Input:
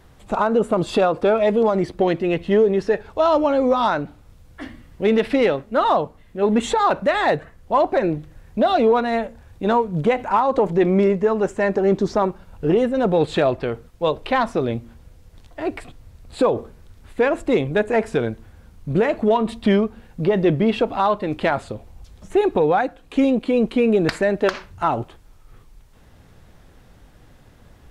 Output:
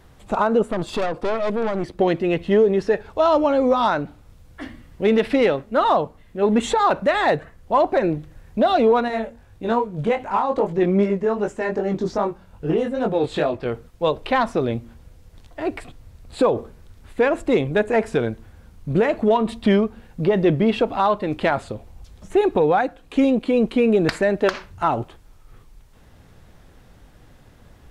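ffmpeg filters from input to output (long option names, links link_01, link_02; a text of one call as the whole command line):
ffmpeg -i in.wav -filter_complex "[0:a]asettb=1/sr,asplit=3[link_01][link_02][link_03];[link_01]atrim=end=0.624[link_04];[link_02]atrim=start=0.62:end=1.99,asetpts=PTS-STARTPTS,afade=type=in:duration=0.004:curve=qsin,afade=type=out:start_time=1.366:duration=0.004:curve=qsin,aeval=exprs='(tanh(8.91*val(0)+0.65)-tanh(0.65))/8.91':channel_layout=same[link_05];[link_03]atrim=start=1.986[link_06];[link_04][link_05]acrossfade=duration=0.004:curve1=hsin:curve2=qsin[link_07];[link_07][link_06]acrossfade=duration=0.004:curve1=qsin:curve2=hsin,asettb=1/sr,asplit=3[link_08][link_09][link_10];[link_08]atrim=end=9.084[link_11];[link_09]atrim=start=9.08:end=13.66,asetpts=PTS-STARTPTS,afade=type=in:duration=0.004:curve=qsin,afade=type=out:start_time=4.576:duration=0.004:curve=qsin,flanger=delay=19:depth=3.7:speed=2.5[link_12];[link_10]atrim=start=13.656[link_13];[link_11][link_12]acrossfade=duration=0.004:curve1=hsin:curve2=qsin[link_14];[link_14][link_13]acrossfade=duration=0.004:curve1=qsin:curve2=hsin" out.wav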